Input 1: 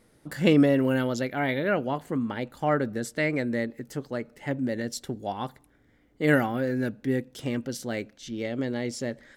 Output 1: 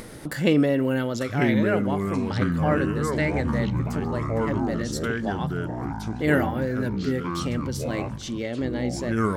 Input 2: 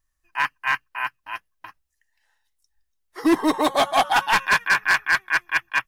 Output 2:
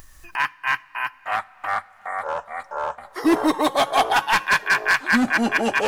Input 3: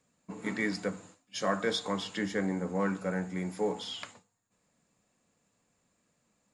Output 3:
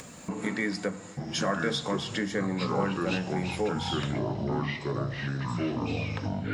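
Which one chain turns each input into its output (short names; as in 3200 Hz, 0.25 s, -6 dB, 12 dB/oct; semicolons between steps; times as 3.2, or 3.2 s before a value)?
two-slope reverb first 0.42 s, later 4.2 s, from -16 dB, DRR 19.5 dB; echoes that change speed 0.789 s, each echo -5 st, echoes 3; upward compressor, threshold -24 dBFS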